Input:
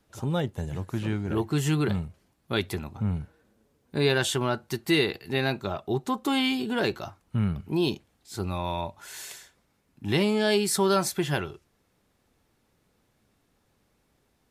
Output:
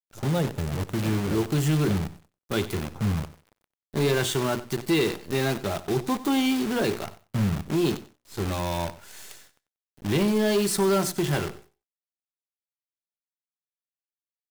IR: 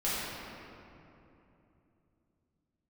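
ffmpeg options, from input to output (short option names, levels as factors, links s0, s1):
-filter_complex "[0:a]highpass=70,bandreject=f=60:t=h:w=6,bandreject=f=120:t=h:w=6,bandreject=f=180:t=h:w=6,bandreject=f=240:t=h:w=6,bandreject=f=300:t=h:w=6,bandreject=f=360:t=h:w=6,bandreject=f=420:t=h:w=6,acrossover=split=660|4500[s0][s1][s2];[s0]acontrast=24[s3];[s3][s1][s2]amix=inputs=3:normalize=0,acrusher=bits=6:dc=4:mix=0:aa=0.000001,asoftclip=type=tanh:threshold=0.15,aecho=1:1:93|186:0.15|0.0254"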